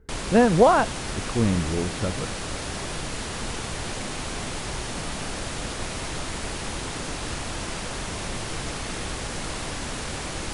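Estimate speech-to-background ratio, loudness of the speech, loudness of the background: 9.0 dB, -22.0 LUFS, -31.0 LUFS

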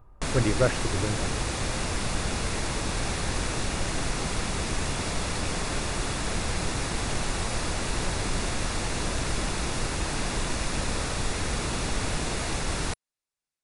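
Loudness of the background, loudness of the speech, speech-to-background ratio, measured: -29.5 LUFS, -29.0 LUFS, 0.5 dB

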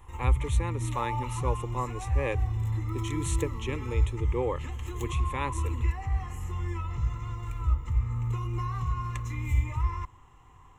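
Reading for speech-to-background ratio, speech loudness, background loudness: -4.0 dB, -35.5 LUFS, -31.5 LUFS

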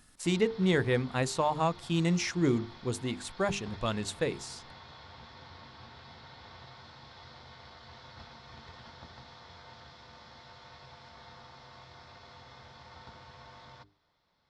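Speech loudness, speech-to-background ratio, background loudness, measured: -30.5 LUFS, 20.0 dB, -50.5 LUFS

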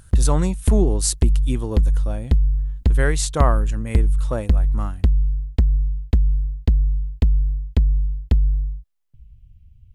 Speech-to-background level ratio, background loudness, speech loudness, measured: -4.0 dB, -22.0 LUFS, -26.0 LUFS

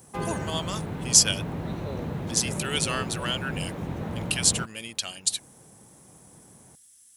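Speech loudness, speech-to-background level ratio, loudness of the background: -25.5 LUFS, 8.0 dB, -33.5 LUFS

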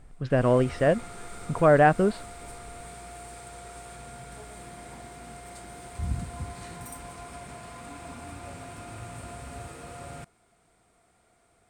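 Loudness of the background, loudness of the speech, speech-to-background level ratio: -41.5 LUFS, -22.5 LUFS, 19.0 dB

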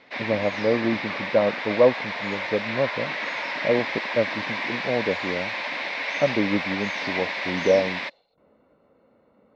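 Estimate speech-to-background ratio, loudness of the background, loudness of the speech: 2.0 dB, -28.0 LUFS, -26.0 LUFS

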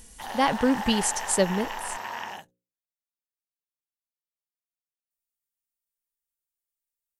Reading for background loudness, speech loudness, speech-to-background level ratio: -34.0 LUFS, -25.5 LUFS, 8.5 dB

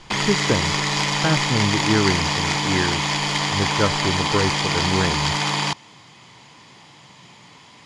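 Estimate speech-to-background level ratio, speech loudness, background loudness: -4.0 dB, -25.0 LUFS, -21.0 LUFS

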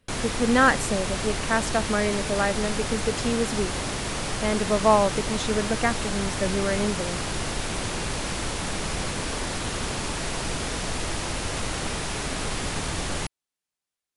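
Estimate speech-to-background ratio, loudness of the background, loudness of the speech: 3.5 dB, -29.0 LUFS, -25.5 LUFS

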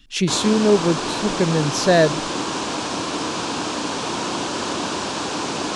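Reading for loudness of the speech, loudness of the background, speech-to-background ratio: -19.0 LUFS, -24.5 LUFS, 5.5 dB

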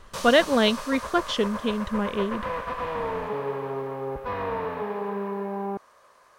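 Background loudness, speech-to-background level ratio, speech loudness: -32.0 LUFS, 8.0 dB, -24.0 LUFS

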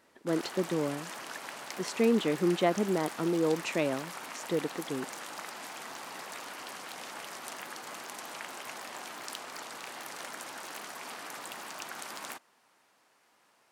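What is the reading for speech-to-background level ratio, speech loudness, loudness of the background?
10.5 dB, -31.0 LUFS, -41.5 LUFS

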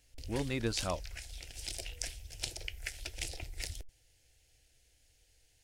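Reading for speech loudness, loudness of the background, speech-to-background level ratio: -37.0 LUFS, -42.5 LUFS, 5.5 dB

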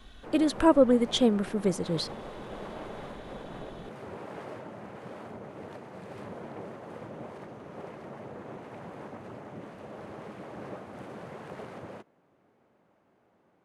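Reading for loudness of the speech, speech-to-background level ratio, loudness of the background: -25.5 LUFS, 17.5 dB, -43.0 LUFS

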